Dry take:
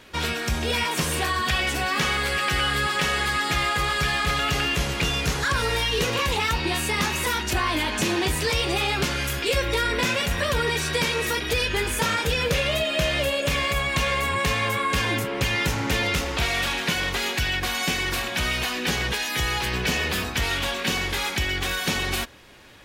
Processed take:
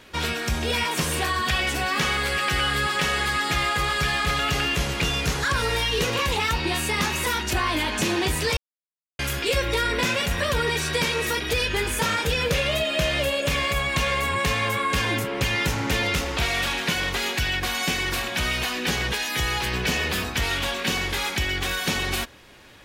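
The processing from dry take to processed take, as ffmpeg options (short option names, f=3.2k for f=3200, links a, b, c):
-filter_complex "[0:a]asettb=1/sr,asplit=3[a][b][c];[a]atrim=end=11.144[d];[b]atrim=start=11.14:end=12.21,asetpts=PTS-STARTPTS,afade=t=in:d=0.004:c=qsin,afade=t=out:st=1.066:d=0.004:c=qsin,volume=16dB,asoftclip=hard,volume=-16dB[e];[c]atrim=start=12.206[f];[d][e]acrossfade=d=0.004:c1=hsin:c2=qsin[g];[g][f]acrossfade=d=0.004:c1=qsin:c2=hsin,asplit=3[h][i][j];[h]atrim=end=8.57,asetpts=PTS-STARTPTS,afade=t=out:st=8.566:d=0.004:c=hsin[k];[i]atrim=start=8.57:end=9.19,asetpts=PTS-STARTPTS,volume=0[l];[j]atrim=start=9.19,asetpts=PTS-STARTPTS,afade=t=in:d=0.004:c=hsin[m];[k][l][m]concat=n=3:v=0:a=1"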